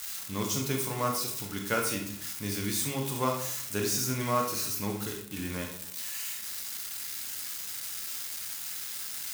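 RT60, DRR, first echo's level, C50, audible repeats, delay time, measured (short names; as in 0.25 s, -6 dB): 0.65 s, 2.0 dB, none, 5.5 dB, none, none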